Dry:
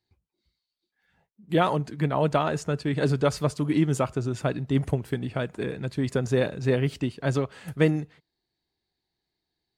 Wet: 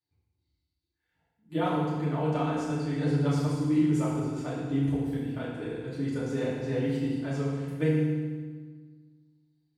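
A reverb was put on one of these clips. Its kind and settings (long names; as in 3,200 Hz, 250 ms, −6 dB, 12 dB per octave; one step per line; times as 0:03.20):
feedback delay network reverb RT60 1.5 s, low-frequency decay 1.4×, high-frequency decay 0.85×, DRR −9 dB
level −16 dB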